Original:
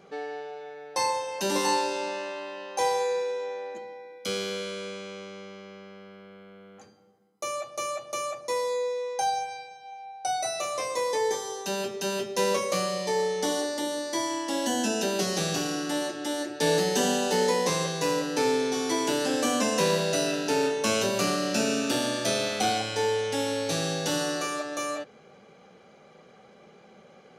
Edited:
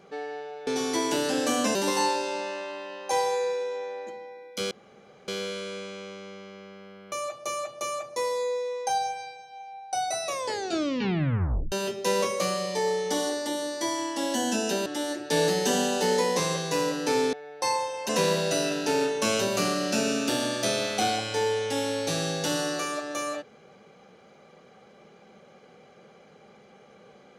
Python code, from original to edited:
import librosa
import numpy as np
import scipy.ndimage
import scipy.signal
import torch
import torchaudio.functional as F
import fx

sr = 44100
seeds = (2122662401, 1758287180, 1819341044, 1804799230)

y = fx.edit(x, sr, fx.swap(start_s=0.67, length_s=0.76, other_s=18.63, other_length_s=1.08),
    fx.insert_room_tone(at_s=4.39, length_s=0.57),
    fx.cut(start_s=6.23, length_s=1.21),
    fx.tape_stop(start_s=10.57, length_s=1.47),
    fx.cut(start_s=15.18, length_s=0.98), tone=tone)